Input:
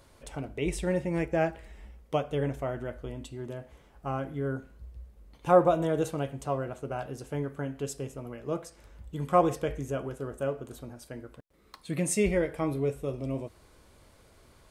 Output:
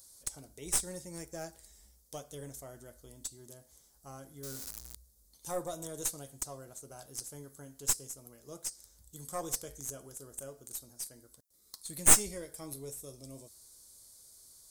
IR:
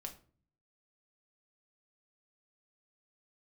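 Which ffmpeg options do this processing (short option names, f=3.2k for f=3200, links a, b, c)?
-filter_complex "[0:a]asettb=1/sr,asplit=3[a][b][c];[a]atrim=end=4.434[d];[b]atrim=start=4.43:end=4.95,asetpts=PTS-STARTPTS,afade=t=in:d=0.004:c=qsin,afade=t=out:st=0.516:d=0.004:c=qsin,aeval=exprs='val(0)+0.5*0.015*sgn(val(0))':c=same[e];[c]atrim=start=4.946[f];[d][e]acrossfade=d=0.004:c1=hsin:c2=qsin[g];[g][f]acrossfade=d=0.004:c1=qsin:c2=hsin,aexciter=amount=9.7:drive=9.6:freq=4.2k,aeval=exprs='2.51*(cos(1*acos(clip(val(0)/2.51,-1,1)))-cos(1*PI/2))+1.26*(cos(2*acos(clip(val(0)/2.51,-1,1)))-cos(2*PI/2))+0.282*(cos(6*acos(clip(val(0)/2.51,-1,1)))-cos(6*PI/2))':c=same,volume=-16dB"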